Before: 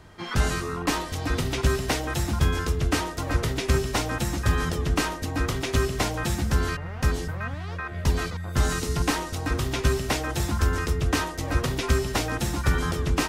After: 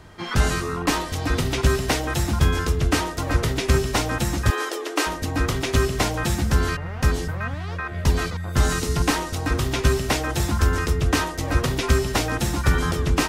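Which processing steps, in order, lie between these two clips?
4.50–5.07 s: brick-wall FIR high-pass 280 Hz; trim +3.5 dB

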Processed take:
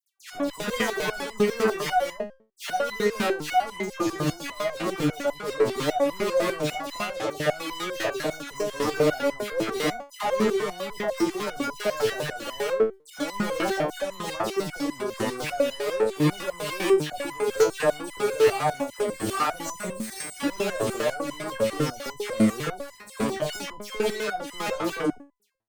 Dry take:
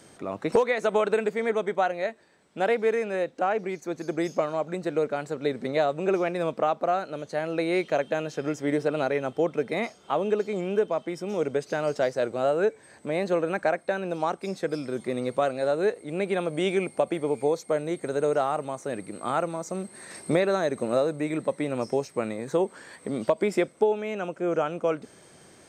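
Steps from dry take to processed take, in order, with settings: fuzz box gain 38 dB, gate -42 dBFS; phase dispersion lows, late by 137 ms, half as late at 1.8 kHz; resonator arpeggio 10 Hz 110–1000 Hz; trim +3.5 dB

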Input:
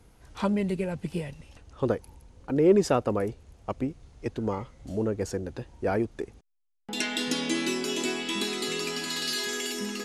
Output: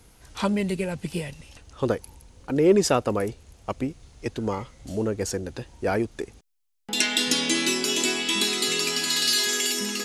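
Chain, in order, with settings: treble shelf 2.2 kHz +9 dB; trim +1.5 dB

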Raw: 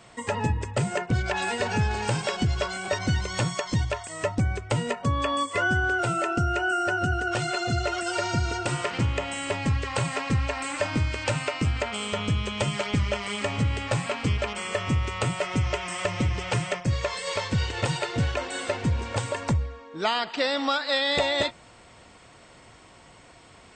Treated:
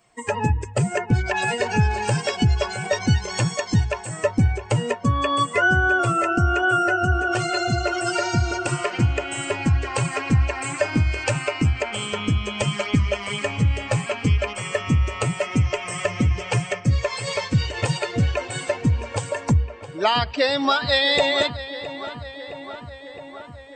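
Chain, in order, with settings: expander on every frequency bin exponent 1.5; filtered feedback delay 664 ms, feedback 73%, low-pass 3.4 kHz, level -13 dB; trim +7.5 dB

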